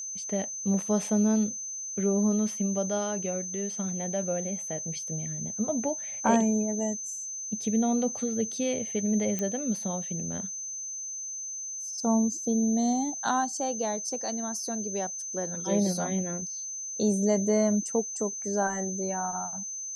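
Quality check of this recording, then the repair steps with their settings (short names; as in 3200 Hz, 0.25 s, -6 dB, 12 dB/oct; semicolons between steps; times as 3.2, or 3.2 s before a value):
tone 6200 Hz -34 dBFS
9.39 pop -17 dBFS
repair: de-click; notch 6200 Hz, Q 30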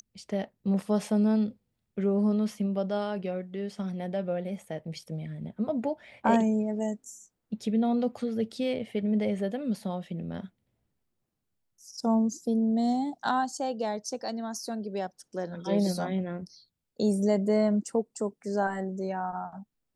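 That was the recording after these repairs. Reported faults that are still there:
9.39 pop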